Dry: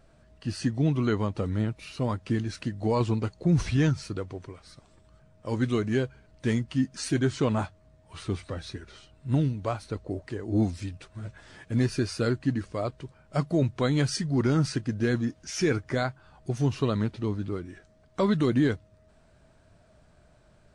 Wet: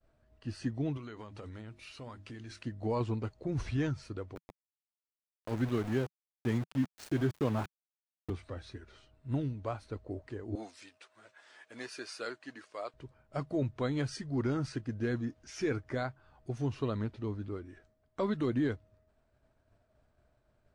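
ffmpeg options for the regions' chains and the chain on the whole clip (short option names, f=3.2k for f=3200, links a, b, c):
-filter_complex "[0:a]asettb=1/sr,asplit=3[a][b][c];[a]atrim=end=0.974[d];[b]atrim=start=0.97:end=2.65,asetpts=PTS-STARTPTS,afade=t=in:d=0.004:c=qsin,afade=t=out:st=1.676:d=0.004:c=qsin,tiltshelf=f=1.2k:g=-5,bandreject=f=50:t=h:w=6,bandreject=f=100:t=h:w=6,bandreject=f=150:t=h:w=6,bandreject=f=200:t=h:w=6,bandreject=f=250:t=h:w=6,bandreject=f=300:t=h:w=6,bandreject=f=350:t=h:w=6,acompressor=threshold=-33dB:ratio=12:attack=3.2:release=140:knee=1:detection=peak[e];[c]atrim=start=2.646[f];[d][e]acrossfade=d=0.004:c1=hsin:c2=qsin[g];[g][f]acrossfade=d=0.004:c1=qsin:c2=hsin,asettb=1/sr,asplit=3[h][i][j];[h]atrim=end=4.354[k];[i]atrim=start=4.35:end=8.3,asetpts=PTS-STARTPTS,afade=t=in:d=0.004:c=qsin,afade=t=out:st=3.946:d=0.004:c=qsin,highpass=f=98:w=0.5412,highpass=f=98:w=1.3066,lowshelf=f=180:g=5.5,aeval=exprs='val(0)*gte(abs(val(0)),0.0299)':c=same[l];[j]atrim=start=8.296[m];[k][l]acrossfade=d=0.004:c1=hsin:c2=qsin[n];[n][m]acrossfade=d=0.004:c1=qsin:c2=hsin,asettb=1/sr,asplit=3[o][p][q];[o]atrim=end=10.554[r];[p]atrim=start=10.55:end=12.94,asetpts=PTS-STARTPTS,afade=t=in:d=0.004:c=qsin,afade=t=out:st=2.386:d=0.004:c=qsin,highpass=600,highshelf=f=2k:g=5[s];[q]atrim=start=12.936[t];[r][s]acrossfade=d=0.004:c1=hsin:c2=qsin[u];[u][t]acrossfade=d=0.004:c1=qsin:c2=hsin,equalizer=f=170:w=5.5:g=-12.5,agate=range=-33dB:threshold=-54dB:ratio=3:detection=peak,highshelf=f=3.6k:g=-8.5,volume=-6.5dB"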